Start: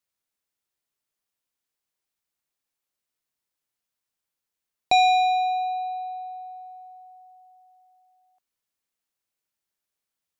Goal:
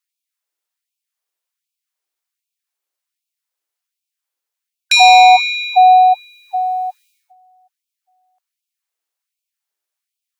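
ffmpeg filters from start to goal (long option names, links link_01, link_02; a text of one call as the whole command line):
ffmpeg -i in.wav -af "agate=range=-21dB:threshold=-49dB:ratio=16:detection=peak,apsyclip=27.5dB,afftfilt=real='re*gte(b*sr/1024,280*pow(2300/280,0.5+0.5*sin(2*PI*1.3*pts/sr)))':imag='im*gte(b*sr/1024,280*pow(2300/280,0.5+0.5*sin(2*PI*1.3*pts/sr)))':win_size=1024:overlap=0.75,volume=-3.5dB" out.wav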